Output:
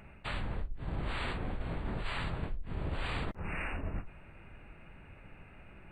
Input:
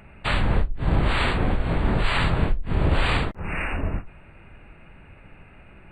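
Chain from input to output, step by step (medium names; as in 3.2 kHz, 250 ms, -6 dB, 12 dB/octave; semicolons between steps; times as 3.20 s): reverse; compression, threshold -27 dBFS, peak gain reduction 12.5 dB; reverse; added noise brown -66 dBFS; trim -5.5 dB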